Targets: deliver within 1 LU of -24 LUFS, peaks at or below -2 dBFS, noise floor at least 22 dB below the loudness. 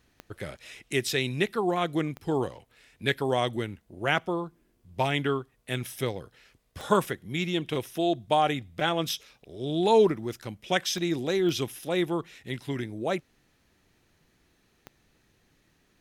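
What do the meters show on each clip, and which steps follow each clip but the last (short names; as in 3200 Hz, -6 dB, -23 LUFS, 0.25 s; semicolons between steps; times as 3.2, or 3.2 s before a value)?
clicks 6; loudness -28.5 LUFS; peak -8.0 dBFS; loudness target -24.0 LUFS
-> de-click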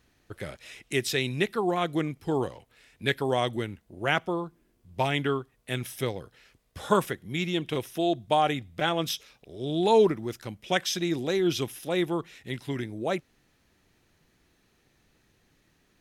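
clicks 0; loudness -28.5 LUFS; peak -8.0 dBFS; loudness target -24.0 LUFS
-> gain +4.5 dB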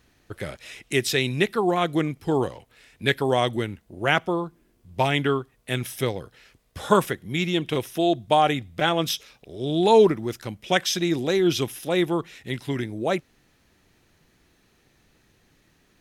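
loudness -24.0 LUFS; peak -3.5 dBFS; noise floor -64 dBFS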